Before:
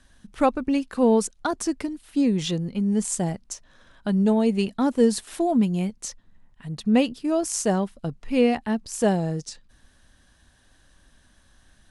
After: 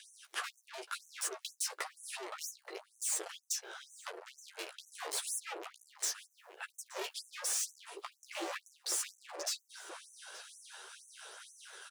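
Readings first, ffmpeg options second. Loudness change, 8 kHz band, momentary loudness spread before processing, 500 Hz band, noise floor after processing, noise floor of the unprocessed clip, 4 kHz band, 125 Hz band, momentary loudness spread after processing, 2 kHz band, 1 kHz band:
-16.0 dB, -3.5 dB, 14 LU, -24.0 dB, -74 dBFS, -59 dBFS, -5.0 dB, under -40 dB, 16 LU, -7.0 dB, -16.5 dB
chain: -filter_complex "[0:a]afreqshift=-150,acrusher=bits=9:mode=log:mix=0:aa=0.000001,aeval=exprs='(tanh(70.8*val(0)+0.55)-tanh(0.55))/70.8':c=same,areverse,acompressor=mode=upward:threshold=-51dB:ratio=2.5,areverse,aphaser=in_gain=1:out_gain=1:delay=2.3:decay=0.28:speed=0.35:type=triangular,acompressor=threshold=-42dB:ratio=5,flanger=delay=9.9:depth=5.6:regen=-14:speed=0.93:shape=sinusoidal,asplit=2[a][b];[b]adelay=874.6,volume=-6dB,highshelf=f=4k:g=-19.7[c];[a][c]amix=inputs=2:normalize=0,afftfilt=real='re*gte(b*sr/1024,310*pow(6000/310,0.5+0.5*sin(2*PI*2.1*pts/sr)))':imag='im*gte(b*sr/1024,310*pow(6000/310,0.5+0.5*sin(2*PI*2.1*pts/sr)))':win_size=1024:overlap=0.75,volume=15dB"

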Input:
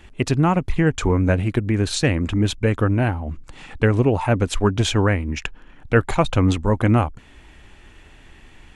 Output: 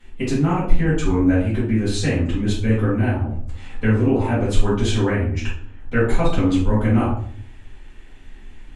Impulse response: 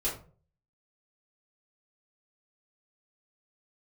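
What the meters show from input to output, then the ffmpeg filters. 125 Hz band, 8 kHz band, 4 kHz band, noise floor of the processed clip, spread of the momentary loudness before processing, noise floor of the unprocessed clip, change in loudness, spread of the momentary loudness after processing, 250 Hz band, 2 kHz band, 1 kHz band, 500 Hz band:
-0.5 dB, -3.5 dB, -3.5 dB, -40 dBFS, 6 LU, -48 dBFS, -0.5 dB, 9 LU, +1.5 dB, -2.0 dB, -3.0 dB, -1.0 dB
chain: -filter_complex "[1:a]atrim=start_sample=2205,asetrate=27342,aresample=44100[a];[0:a][a]afir=irnorm=-1:irlink=0,volume=-11.5dB"

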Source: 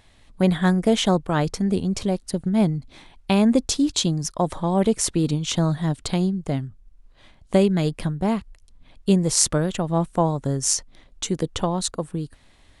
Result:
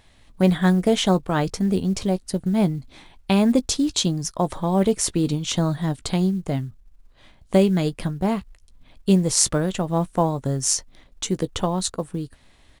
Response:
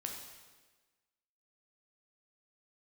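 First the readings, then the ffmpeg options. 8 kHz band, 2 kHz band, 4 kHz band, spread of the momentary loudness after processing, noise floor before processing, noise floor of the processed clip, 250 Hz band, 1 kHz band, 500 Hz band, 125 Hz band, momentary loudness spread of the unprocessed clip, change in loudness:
0.0 dB, 0.0 dB, 0.0 dB, 10 LU, -55 dBFS, -55 dBFS, +0.5 dB, 0.0 dB, +0.5 dB, 0.0 dB, 10 LU, +0.5 dB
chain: -filter_complex "[0:a]asplit=2[a][b];[b]adelay=16,volume=-14dB[c];[a][c]amix=inputs=2:normalize=0,acrusher=bits=9:mode=log:mix=0:aa=0.000001"

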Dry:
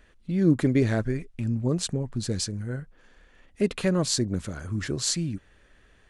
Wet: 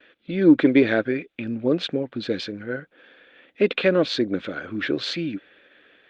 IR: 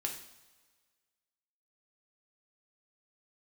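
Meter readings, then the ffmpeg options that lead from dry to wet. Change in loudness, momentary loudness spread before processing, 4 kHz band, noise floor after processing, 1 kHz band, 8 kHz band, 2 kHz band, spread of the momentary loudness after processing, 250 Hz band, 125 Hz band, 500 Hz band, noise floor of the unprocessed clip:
+4.0 dB, 11 LU, +2.5 dB, -66 dBFS, +5.0 dB, under -15 dB, +10.0 dB, 14 LU, +5.0 dB, -7.0 dB, +7.5 dB, -59 dBFS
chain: -af "agate=range=-33dB:threshold=-55dB:ratio=3:detection=peak,highpass=290,equalizer=f=300:t=q:w=4:g=7,equalizer=f=520:t=q:w=4:g=6,equalizer=f=990:t=q:w=4:g=-6,equalizer=f=1.5k:t=q:w=4:g=6,equalizer=f=2.4k:t=q:w=4:g=7,equalizer=f=3.5k:t=q:w=4:g=9,lowpass=f=3.8k:w=0.5412,lowpass=f=3.8k:w=1.3066,acontrast=36" -ar 48000 -c:a libopus -b:a 48k

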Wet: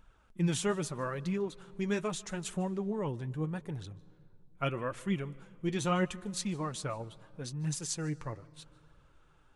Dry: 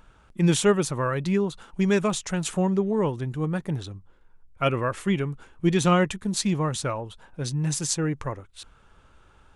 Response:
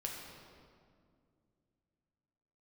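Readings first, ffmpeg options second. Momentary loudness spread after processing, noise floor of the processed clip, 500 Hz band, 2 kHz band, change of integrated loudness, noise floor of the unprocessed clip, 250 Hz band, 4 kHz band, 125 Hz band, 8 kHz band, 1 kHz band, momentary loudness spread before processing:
13 LU, -63 dBFS, -10.5 dB, -9.5 dB, -10.0 dB, -57 dBFS, -10.0 dB, -9.5 dB, -9.5 dB, -9.5 dB, -9.5 dB, 12 LU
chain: -filter_complex "[0:a]flanger=delay=0.3:depth=9:regen=45:speed=0.78:shape=triangular,asplit=2[a][b];[1:a]atrim=start_sample=2205,adelay=150[c];[b][c]afir=irnorm=-1:irlink=0,volume=-21.5dB[d];[a][d]amix=inputs=2:normalize=0,volume=-5.5dB"

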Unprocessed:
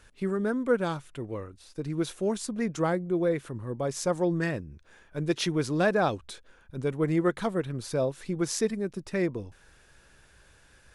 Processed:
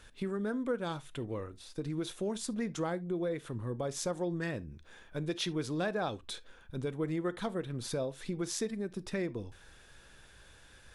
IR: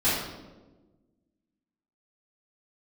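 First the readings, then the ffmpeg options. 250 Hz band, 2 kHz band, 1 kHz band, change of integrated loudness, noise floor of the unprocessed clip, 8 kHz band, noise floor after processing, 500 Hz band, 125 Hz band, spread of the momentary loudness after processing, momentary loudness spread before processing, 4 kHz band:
-6.5 dB, -7.5 dB, -8.0 dB, -7.0 dB, -59 dBFS, -4.5 dB, -58 dBFS, -7.5 dB, -6.5 dB, 9 LU, 13 LU, -3.0 dB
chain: -filter_complex "[0:a]equalizer=f=3.5k:w=5.3:g=6,acompressor=threshold=-35dB:ratio=2.5,asplit=2[a][b];[1:a]atrim=start_sample=2205,atrim=end_sample=3528[c];[b][c]afir=irnorm=-1:irlink=0,volume=-28.5dB[d];[a][d]amix=inputs=2:normalize=0"

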